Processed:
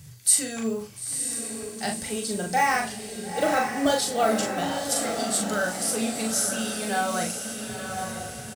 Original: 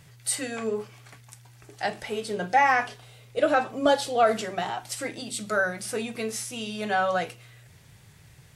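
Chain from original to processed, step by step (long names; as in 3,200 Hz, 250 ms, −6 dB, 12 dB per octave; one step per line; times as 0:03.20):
one scale factor per block 7 bits
high-pass filter 56 Hz
bass and treble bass +14 dB, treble +13 dB
mains-hum notches 60/120/180 Hz
double-tracking delay 40 ms −4 dB
feedback delay with all-pass diffusion 937 ms, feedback 50%, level −6 dB
level −4.5 dB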